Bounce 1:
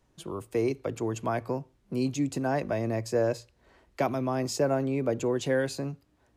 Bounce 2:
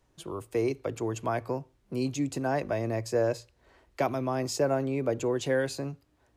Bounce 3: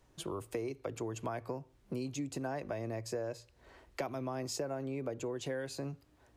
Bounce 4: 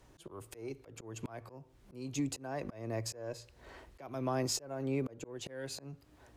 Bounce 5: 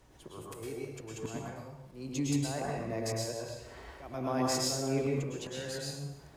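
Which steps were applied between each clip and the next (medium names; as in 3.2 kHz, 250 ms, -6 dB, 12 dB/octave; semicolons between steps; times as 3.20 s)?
peaking EQ 200 Hz -5 dB 0.68 oct
compression 5:1, threshold -38 dBFS, peak gain reduction 15.5 dB; trim +2 dB
Chebyshev shaper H 8 -34 dB, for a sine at -23.5 dBFS; slow attack 352 ms; trim +5.5 dB
plate-style reverb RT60 0.84 s, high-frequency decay 0.95×, pre-delay 95 ms, DRR -3.5 dB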